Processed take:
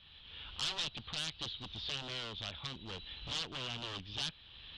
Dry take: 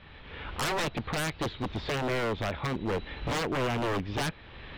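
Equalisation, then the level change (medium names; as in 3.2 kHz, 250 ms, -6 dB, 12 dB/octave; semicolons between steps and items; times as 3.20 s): distance through air 110 m; amplifier tone stack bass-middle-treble 5-5-5; resonant high shelf 2.6 kHz +6.5 dB, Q 3; +1.0 dB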